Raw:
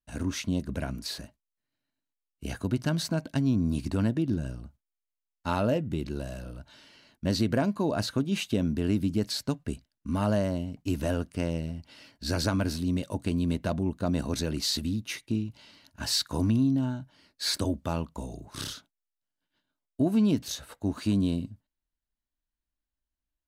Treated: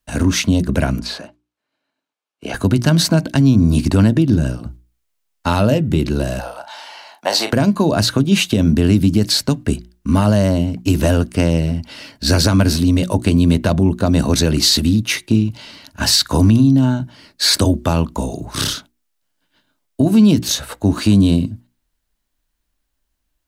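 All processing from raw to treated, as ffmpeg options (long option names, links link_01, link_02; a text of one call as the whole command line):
ffmpeg -i in.wav -filter_complex "[0:a]asettb=1/sr,asplit=3[link_01][link_02][link_03];[link_01]atrim=end=1.004[link_04];[link_02]atrim=start=1:end=2.54,asetpts=PTS-STARTPTS,afade=type=in:duration=0.004:curve=qsin,afade=type=out:start_time=1.536:duration=0.004:curve=qsin,highpass=570,aemphasis=mode=reproduction:type=riaa,bandreject=frequency=1900:width=9.8[link_05];[link_03]atrim=start=2.536[link_06];[link_04][link_05]acrossfade=duration=0.004:curve1=hsin:curve2=qsin[link_07];[link_07][link_06]acrossfade=duration=0.004:curve1=qsin:curve2=hsin,asettb=1/sr,asplit=3[link_08][link_09][link_10];[link_08]atrim=end=6.394[link_11];[link_09]atrim=start=6.39:end=7.53,asetpts=PTS-STARTPTS,afade=type=in:duration=0.004:curve=qsin,afade=type=out:start_time=1.136:duration=0.004:curve=qsin,highpass=frequency=800:width_type=q:width=6.4,asplit=2[link_12][link_13];[link_13]adelay=38,volume=-9dB[link_14];[link_12][link_14]amix=inputs=2:normalize=0,atrim=end_sample=50274[link_15];[link_10]atrim=start=7.526[link_16];[link_11][link_15]acrossfade=duration=0.004:curve1=hsin:curve2=qsin[link_17];[link_17][link_16]acrossfade=duration=0.004:curve1=qsin:curve2=hsin,acrossover=split=190|3000[link_18][link_19][link_20];[link_19]acompressor=threshold=-30dB:ratio=6[link_21];[link_18][link_21][link_20]amix=inputs=3:normalize=0,bandreject=frequency=60:width_type=h:width=6,bandreject=frequency=120:width_type=h:width=6,bandreject=frequency=180:width_type=h:width=6,bandreject=frequency=240:width_type=h:width=6,bandreject=frequency=300:width_type=h:width=6,bandreject=frequency=360:width_type=h:width=6,alimiter=level_in=19dB:limit=-1dB:release=50:level=0:latency=1,volume=-2.5dB" out.wav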